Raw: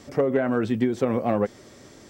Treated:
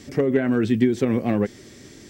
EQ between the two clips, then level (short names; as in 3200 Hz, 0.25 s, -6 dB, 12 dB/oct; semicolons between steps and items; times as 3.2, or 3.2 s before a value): band shelf 830 Hz -9 dB; +4.5 dB